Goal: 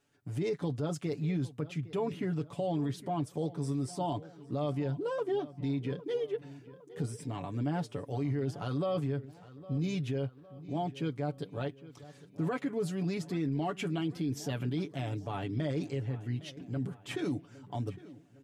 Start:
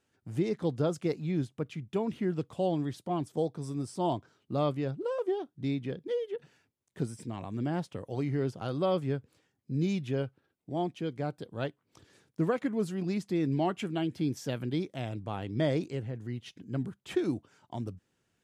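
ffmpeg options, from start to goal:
ffmpeg -i in.wav -filter_complex "[0:a]aecho=1:1:7:0.67,alimiter=level_in=1dB:limit=-24dB:level=0:latency=1:release=23,volume=-1dB,asplit=2[link_01][link_02];[link_02]adelay=809,lowpass=frequency=3600:poles=1,volume=-17.5dB,asplit=2[link_03][link_04];[link_04]adelay=809,lowpass=frequency=3600:poles=1,volume=0.52,asplit=2[link_05][link_06];[link_06]adelay=809,lowpass=frequency=3600:poles=1,volume=0.52,asplit=2[link_07][link_08];[link_08]adelay=809,lowpass=frequency=3600:poles=1,volume=0.52[link_09];[link_03][link_05][link_07][link_09]amix=inputs=4:normalize=0[link_10];[link_01][link_10]amix=inputs=2:normalize=0" out.wav

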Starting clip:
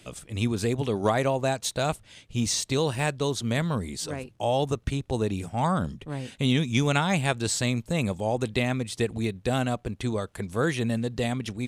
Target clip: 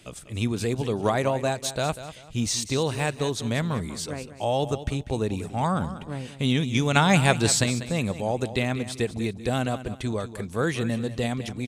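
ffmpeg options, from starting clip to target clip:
ffmpeg -i in.wav -filter_complex "[0:a]asettb=1/sr,asplit=3[link_01][link_02][link_03];[link_01]atrim=end=6.964[link_04];[link_02]atrim=start=6.96:end=7.64,asetpts=PTS-STARTPTS,afade=type=in:duration=0.004:curve=qsin,afade=type=out:start_time=0.676:duration=0.004:curve=qsin,acontrast=44[link_05];[link_03]atrim=start=7.636[link_06];[link_04][link_05]acrossfade=duration=0.004:curve1=hsin:curve2=qsin[link_07];[link_07][link_06]acrossfade=duration=0.004:curve1=qsin:curve2=hsin,aecho=1:1:194|388|582:0.224|0.0672|0.0201" out.wav

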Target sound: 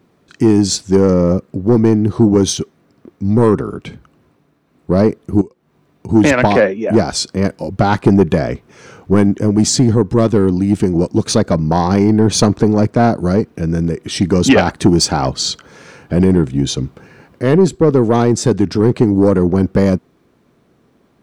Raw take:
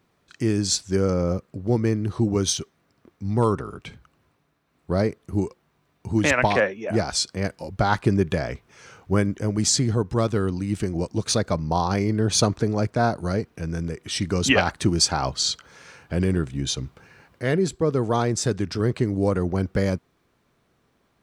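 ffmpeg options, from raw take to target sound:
ffmpeg -i in.wav -filter_complex "[0:a]equalizer=frequency=270:width_type=o:width=2.5:gain=10,asettb=1/sr,asplit=3[link_01][link_02][link_03];[link_01]atrim=end=5.414[link_04];[link_02]atrim=start=5.41:end=6.09,asetpts=PTS-STARTPTS,afade=type=in:duration=0.004:curve=qsin,afade=type=out:start_time=0.676:duration=0.004:curve=qsin,acompressor=threshold=-32dB:ratio=8[link_05];[link_03]atrim=start=6.086[link_06];[link_04][link_05]acrossfade=duration=0.004:curve1=hsin:curve2=qsin[link_07];[link_07][link_06]acrossfade=duration=0.004:curve1=qsin:curve2=hsin,asoftclip=type=tanh:threshold=-7dB,volume=5dB" out.wav

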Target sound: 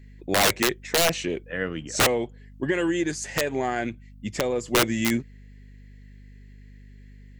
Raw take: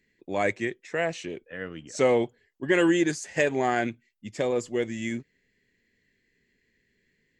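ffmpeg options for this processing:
ffmpeg -i in.wav -filter_complex "[0:a]asettb=1/sr,asplit=3[link_01][link_02][link_03];[link_01]atrim=end=2.064[link_04];[link_02]atrim=start=2.06:end=4.68,asetpts=PTS-STARTPTS,afade=type=in:duration=0.004:curve=qsin,afade=type=out:start_time=2.616:duration=0.004:curve=qsin,acompressor=threshold=-31dB:ratio=4[link_05];[link_03]atrim=start=4.676[link_06];[link_04][link_05]acrossfade=duration=0.004:curve1=hsin:curve2=qsin[link_07];[link_07][link_06]acrossfade=duration=0.004:curve1=qsin:curve2=hsin,aeval=exprs='val(0)+0.00224*(sin(2*PI*50*n/s)+sin(2*PI*2*50*n/s)/2+sin(2*PI*3*50*n/s)/3+sin(2*PI*4*50*n/s)/4+sin(2*PI*5*50*n/s)/5)':channel_layout=same,aeval=exprs='(mod(10.6*val(0)+1,2)-1)/10.6':channel_layout=same,volume=7.5dB" out.wav

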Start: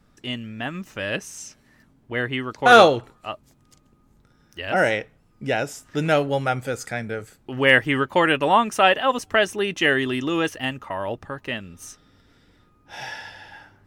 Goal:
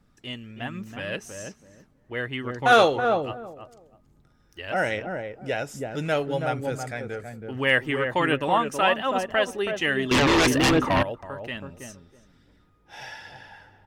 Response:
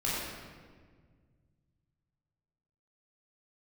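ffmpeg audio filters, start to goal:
-filter_complex "[0:a]asplit=2[link_01][link_02];[link_02]adelay=325,lowpass=frequency=810:poles=1,volume=-3.5dB,asplit=2[link_03][link_04];[link_04]adelay=325,lowpass=frequency=810:poles=1,volume=0.21,asplit=2[link_05][link_06];[link_06]adelay=325,lowpass=frequency=810:poles=1,volume=0.21[link_07];[link_01][link_03][link_05][link_07]amix=inputs=4:normalize=0,asettb=1/sr,asplit=3[link_08][link_09][link_10];[link_08]atrim=end=10.114[link_11];[link_09]atrim=start=10.11:end=11.03,asetpts=PTS-STARTPTS,afade=type=in:duration=0.004:curve=qsin,afade=type=out:start_time=0.916:duration=0.004:curve=qsin,aeval=exprs='0.316*sin(PI/2*3.98*val(0)/0.316)':channel_layout=same[link_12];[link_10]atrim=start=11.026[link_13];[link_11][link_12]acrossfade=duration=0.004:curve1=hsin:curve2=qsin[link_14];[link_14][link_13]acrossfade=duration=0.004:curve1=qsin:curve2=hsin,aphaser=in_gain=1:out_gain=1:delay=2.7:decay=0.26:speed=1.2:type=triangular,volume=-5.5dB"

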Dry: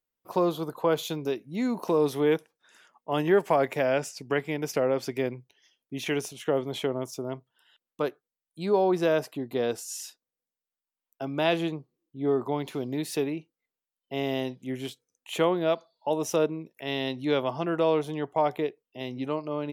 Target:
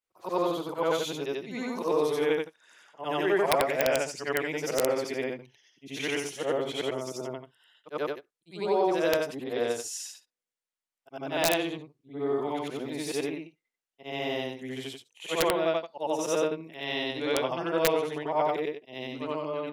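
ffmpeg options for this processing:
ffmpeg -i in.wav -filter_complex "[0:a]afftfilt=real='re':imag='-im':win_size=8192:overlap=0.75,lowpass=9300,equalizer=frequency=2100:width_type=o:width=1.1:gain=3,acrossover=split=310[link_01][link_02];[link_01]alimiter=level_in=11dB:limit=-24dB:level=0:latency=1,volume=-11dB[link_03];[link_02]acontrast=46[link_04];[link_03][link_04]amix=inputs=2:normalize=0,aeval=exprs='(mod(3.98*val(0)+1,2)-1)/3.98':channel_layout=same,crystalizer=i=0.5:c=0,volume=-2dB" out.wav

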